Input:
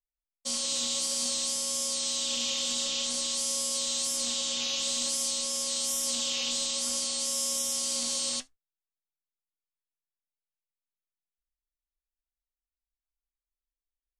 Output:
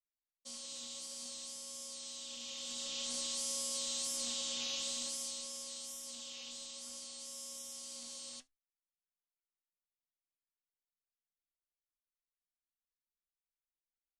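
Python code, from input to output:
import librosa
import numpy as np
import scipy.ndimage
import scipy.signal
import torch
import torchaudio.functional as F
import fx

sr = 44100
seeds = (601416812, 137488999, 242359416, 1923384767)

y = fx.gain(x, sr, db=fx.line((2.4, -16.0), (3.14, -8.0), (4.75, -8.0), (6.03, -17.0)))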